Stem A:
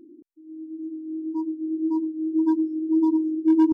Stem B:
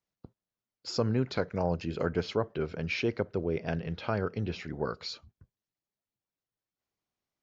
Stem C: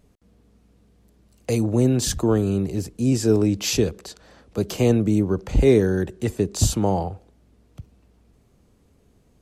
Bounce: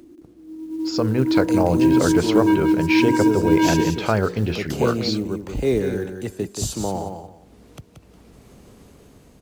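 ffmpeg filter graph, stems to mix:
ffmpeg -i stem1.wav -i stem2.wav -i stem3.wav -filter_complex "[0:a]lowpass=1000,asoftclip=type=tanh:threshold=-26.5dB,volume=1.5dB,asplit=2[link_01][link_02];[link_02]volume=-5dB[link_03];[1:a]bandreject=frequency=60:width_type=h:width=6,bandreject=frequency=120:width_type=h:width=6,bandreject=frequency=180:width_type=h:width=6,bandreject=frequency=240:width_type=h:width=6,bandreject=frequency=300:width_type=h:width=6,bandreject=frequency=360:width_type=h:width=6,bandreject=frequency=420:width_type=h:width=6,bandreject=frequency=480:width_type=h:width=6,volume=0dB,asplit=2[link_04][link_05];[2:a]acompressor=mode=upward:threshold=-25dB:ratio=2.5,lowshelf=frequency=110:gain=-8,volume=-15.5dB,asplit=2[link_06][link_07];[link_07]volume=-7dB[link_08];[link_05]apad=whole_len=164605[link_09];[link_01][link_09]sidechaincompress=threshold=-32dB:ratio=8:attack=16:release=110[link_10];[link_03][link_08]amix=inputs=2:normalize=0,aecho=0:1:179|358|537|716:1|0.22|0.0484|0.0106[link_11];[link_10][link_04][link_06][link_11]amix=inputs=4:normalize=0,dynaudnorm=framelen=150:gausssize=13:maxgain=12dB,acrusher=bits=8:mode=log:mix=0:aa=0.000001" out.wav

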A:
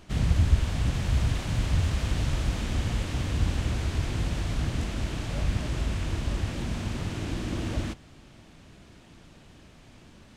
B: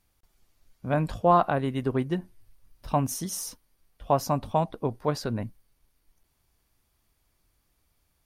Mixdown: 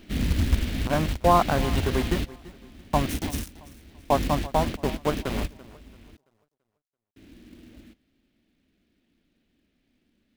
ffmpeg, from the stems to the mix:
ffmpeg -i stem1.wav -i stem2.wav -filter_complex "[0:a]equalizer=frequency=125:width_type=o:width=1:gain=-9,equalizer=frequency=250:width_type=o:width=1:gain=10,equalizer=frequency=1000:width_type=o:width=1:gain=-10,equalizer=frequency=2000:width_type=o:width=1:gain=4,equalizer=frequency=4000:width_type=o:width=1:gain=4,equalizer=frequency=8000:width_type=o:width=1:gain=-11,acrusher=bits=4:mode=log:mix=0:aa=0.000001,volume=0.5dB,asplit=3[link_01][link_02][link_03];[link_01]atrim=end=6.17,asetpts=PTS-STARTPTS,afade=type=out:start_time=6.166:duration=0.004:curve=hsin[link_04];[link_02]atrim=start=6.17:end=7.16,asetpts=PTS-STARTPTS,volume=0[link_05];[link_03]atrim=start=7.16,asetpts=PTS-STARTPTS,afade=type=in:duration=0.004:curve=hsin[link_06];[link_04][link_05][link_06]concat=n=3:v=0:a=1[link_07];[1:a]equalizer=frequency=120:width=5.1:gain=-8,aeval=exprs='val(0)*gte(abs(val(0)),0.0398)':channel_layout=same,volume=1dB,asplit=3[link_08][link_09][link_10];[link_09]volume=-18.5dB[link_11];[link_10]apad=whole_len=457096[link_12];[link_07][link_12]sidechaingate=range=-21dB:threshold=-35dB:ratio=16:detection=peak[link_13];[link_11]aecho=0:1:336|672|1008|1344|1680:1|0.33|0.109|0.0359|0.0119[link_14];[link_13][link_08][link_14]amix=inputs=3:normalize=0" out.wav

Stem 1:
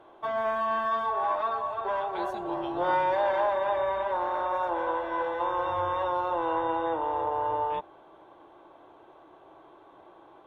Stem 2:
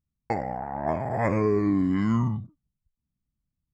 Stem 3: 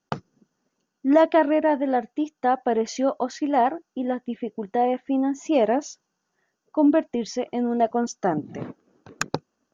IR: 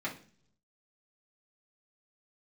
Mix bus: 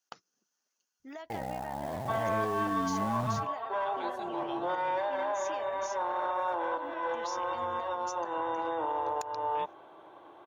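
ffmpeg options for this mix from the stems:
-filter_complex "[0:a]highpass=85,adelay=1850,volume=2dB[link_01];[1:a]alimiter=limit=-22.5dB:level=0:latency=1:release=12,acrusher=bits=4:mode=log:mix=0:aa=0.000001,adelay=1000,volume=-5dB[link_02];[2:a]highpass=frequency=1400:poles=1,highshelf=frequency=4600:gain=10.5,acompressor=threshold=-35dB:ratio=6,volume=-6.5dB,asplit=2[link_03][link_04];[link_04]apad=whole_len=542939[link_05];[link_01][link_05]sidechaincompress=threshold=-46dB:ratio=8:attack=6.2:release=266[link_06];[link_06][link_03]amix=inputs=2:normalize=0,lowshelf=frequency=470:gain=-4,alimiter=limit=-23.5dB:level=0:latency=1:release=58,volume=0dB[link_07];[link_02][link_07]amix=inputs=2:normalize=0"

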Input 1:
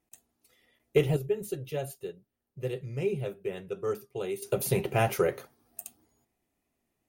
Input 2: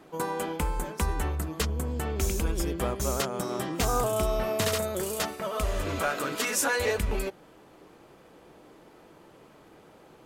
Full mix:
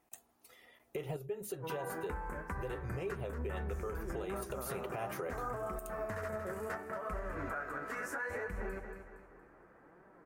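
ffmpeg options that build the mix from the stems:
ffmpeg -i stem1.wav -i stem2.wav -filter_complex "[0:a]equalizer=frequency=980:width=0.59:gain=11.5,acompressor=threshold=-35dB:ratio=2.5,highshelf=frequency=7400:gain=5,volume=0dB[link_01];[1:a]highshelf=frequency=2400:width_type=q:width=3:gain=-12.5,flanger=delay=5.1:depth=9.7:regen=41:speed=0.7:shape=sinusoidal,adelay=1500,volume=-5dB,asplit=2[link_02][link_03];[link_03]volume=-11dB,aecho=0:1:232|464|696|928|1160|1392:1|0.4|0.16|0.064|0.0256|0.0102[link_04];[link_01][link_02][link_04]amix=inputs=3:normalize=0,alimiter=level_in=6dB:limit=-24dB:level=0:latency=1:release=192,volume=-6dB" out.wav

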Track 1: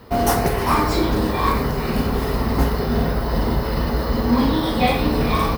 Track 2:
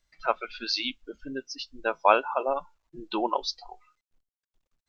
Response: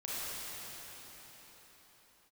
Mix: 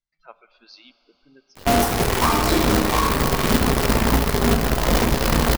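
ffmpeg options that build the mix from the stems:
-filter_complex "[0:a]acrusher=bits=4:dc=4:mix=0:aa=0.000001,adelay=1550,volume=0.5dB,asplit=2[link_01][link_02];[link_02]volume=-12dB[link_03];[1:a]equalizer=frequency=160:width=3.7:gain=11.5,volume=-19dB,asplit=2[link_04][link_05];[link_05]volume=-17.5dB[link_06];[2:a]atrim=start_sample=2205[link_07];[link_03][link_06]amix=inputs=2:normalize=0[link_08];[link_08][link_07]afir=irnorm=-1:irlink=0[link_09];[link_01][link_04][link_09]amix=inputs=3:normalize=0,alimiter=limit=-7.5dB:level=0:latency=1:release=308"

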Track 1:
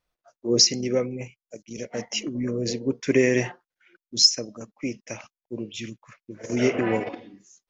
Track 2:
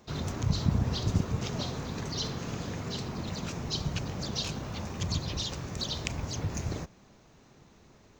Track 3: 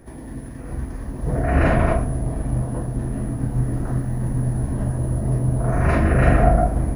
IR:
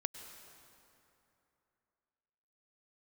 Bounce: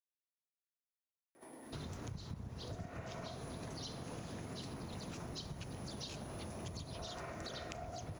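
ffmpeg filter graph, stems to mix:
-filter_complex "[1:a]adelay=1650,volume=-5dB[link_01];[2:a]bandreject=frequency=1700:width=8.9,adelay=1350,volume=-10dB,highpass=420,acompressor=threshold=-36dB:ratio=6,volume=0dB[link_02];[link_01][link_02]amix=inputs=2:normalize=0,acompressor=threshold=-42dB:ratio=10"

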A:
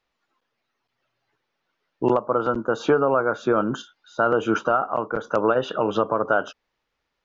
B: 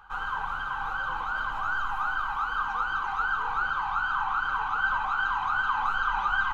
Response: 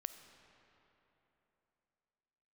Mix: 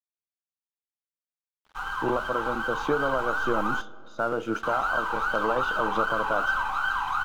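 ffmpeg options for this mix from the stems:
-filter_complex "[0:a]bandreject=frequency=410:width=13,volume=-4.5dB,asplit=2[link_01][link_02];[link_02]volume=-5.5dB[link_03];[1:a]highshelf=frequency=3800:gain=7.5,adelay=1650,volume=2.5dB,asplit=3[link_04][link_05][link_06];[link_04]atrim=end=3.81,asetpts=PTS-STARTPTS,afade=type=out:start_time=3.806:duration=0.004:curve=hsin[link_07];[link_05]atrim=start=3.81:end=4.63,asetpts=PTS-STARTPTS,volume=0[link_08];[link_06]atrim=start=4.63,asetpts=PTS-STARTPTS,afade=type=in:duration=0.004:curve=hsin[link_09];[link_07][link_08][link_09]concat=n=3:v=0:a=1,asplit=2[link_10][link_11];[link_11]volume=-8.5dB[link_12];[2:a]atrim=start_sample=2205[link_13];[link_03][link_12]amix=inputs=2:normalize=0[link_14];[link_14][link_13]afir=irnorm=-1:irlink=0[link_15];[link_01][link_10][link_15]amix=inputs=3:normalize=0,flanger=delay=4.5:depth=2.9:regen=-89:speed=0.36:shape=sinusoidal,aeval=exprs='sgn(val(0))*max(abs(val(0))-0.00398,0)':channel_layout=same"

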